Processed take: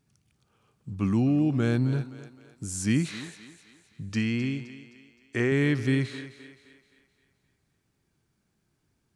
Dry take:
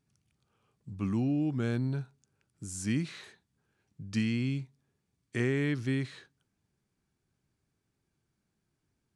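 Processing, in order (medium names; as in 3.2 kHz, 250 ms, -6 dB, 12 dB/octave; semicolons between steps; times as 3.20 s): 4.09–5.52 s: fifteen-band graphic EQ 160 Hz -11 dB, 4 kHz -5 dB, 10 kHz -9 dB; on a send: thinning echo 260 ms, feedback 47%, high-pass 270 Hz, level -12.5 dB; on the sum: trim +6 dB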